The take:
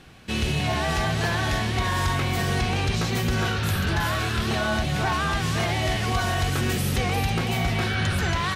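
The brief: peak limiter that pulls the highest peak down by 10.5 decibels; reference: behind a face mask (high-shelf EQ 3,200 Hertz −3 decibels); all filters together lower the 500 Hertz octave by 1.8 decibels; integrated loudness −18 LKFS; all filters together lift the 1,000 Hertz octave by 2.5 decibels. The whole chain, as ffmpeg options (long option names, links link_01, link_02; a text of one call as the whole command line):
ffmpeg -i in.wav -af "equalizer=frequency=500:width_type=o:gain=-4.5,equalizer=frequency=1000:width_type=o:gain=5,alimiter=limit=-23.5dB:level=0:latency=1,highshelf=frequency=3200:gain=-3,volume=13.5dB" out.wav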